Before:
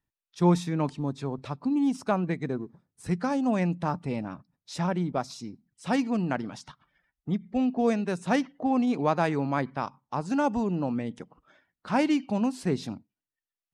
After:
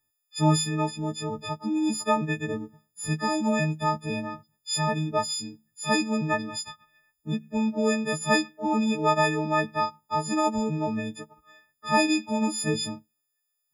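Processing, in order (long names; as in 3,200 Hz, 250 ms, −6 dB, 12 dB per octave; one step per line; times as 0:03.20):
every partial snapped to a pitch grid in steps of 6 semitones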